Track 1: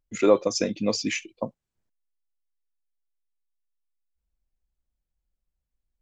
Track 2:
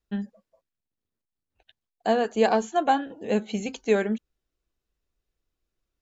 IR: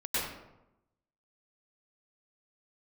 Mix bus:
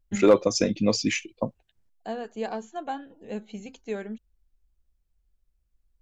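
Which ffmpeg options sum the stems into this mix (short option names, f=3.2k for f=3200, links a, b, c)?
-filter_complex "[0:a]volume=1dB,asplit=2[a][b];[1:a]volume=-5.5dB[c];[b]apad=whole_len=265092[d];[c][d]sidechaingate=range=-6dB:threshold=-47dB:ratio=16:detection=peak[e];[a][e]amix=inputs=2:normalize=0,lowshelf=f=110:g=11,asoftclip=type=hard:threshold=-8.5dB"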